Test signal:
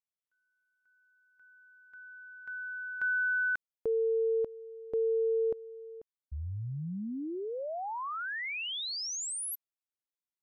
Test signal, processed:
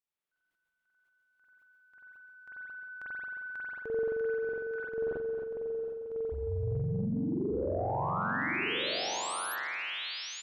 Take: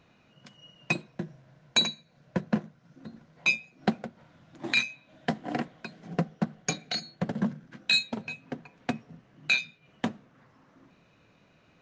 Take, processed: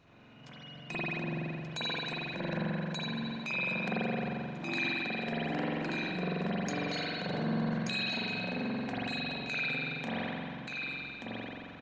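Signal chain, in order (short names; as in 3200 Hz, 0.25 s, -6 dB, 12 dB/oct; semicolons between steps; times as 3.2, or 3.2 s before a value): speakerphone echo 0.21 s, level -23 dB; compressor 2.5:1, threshold -37 dBFS; on a send: echo 1.181 s -5.5 dB; on the sum: hard clip -19 dBFS; spring tank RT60 2.2 s, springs 44 ms, chirp 35 ms, DRR -9.5 dB; in parallel at -2 dB: limiter -23.5 dBFS; on the sum: transient shaper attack -4 dB, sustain +7 dB; gain -8 dB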